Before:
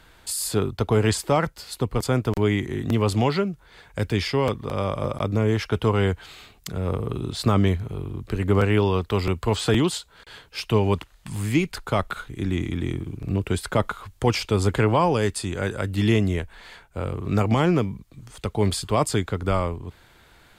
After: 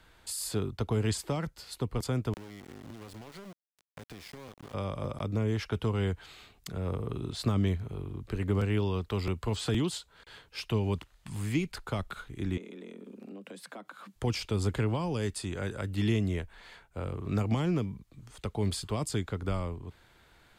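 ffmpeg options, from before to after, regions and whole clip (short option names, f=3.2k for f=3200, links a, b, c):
-filter_complex "[0:a]asettb=1/sr,asplit=3[a][b][c];[a]atrim=end=2.344[d];[b]atrim=start=2.34:end=4.74,asetpts=PTS-STARTPTS,afade=t=in:d=0.004:c=qsin,afade=t=out:st=2.396:d=0.004:c=qsin,acompressor=threshold=-34dB:ratio=16:attack=3.2:release=140:knee=1:detection=peak,aeval=exprs='val(0)*gte(abs(val(0)),0.0133)':c=same[e];[c]atrim=start=4.736[f];[d][e]acrossfade=d=0.004:c1=hsin:c2=qsin[g];[g][f]acrossfade=d=0.004:c1=qsin:c2=hsin,asettb=1/sr,asplit=3[h][i][j];[h]atrim=end=12.574[k];[i]atrim=start=12.57:end=14.16,asetpts=PTS-STARTPTS,afade=t=in:d=0.004:c=qsin,afade=t=out:st=1.586:d=0.004:c=qsin,highpass=110,acompressor=threshold=-35dB:ratio=5:attack=3.2:release=140:knee=1:detection=peak,afreqshift=100[l];[j]atrim=start=14.156[m];[k][l]acrossfade=d=0.004:c1=hsin:c2=qsin[n];[n][m]acrossfade=d=0.004:c1=qsin:c2=hsin,highshelf=f=10k:g=-3.5,acrossover=split=320|3000[o][p][q];[p]acompressor=threshold=-28dB:ratio=6[r];[o][r][q]amix=inputs=3:normalize=0,volume=-7dB"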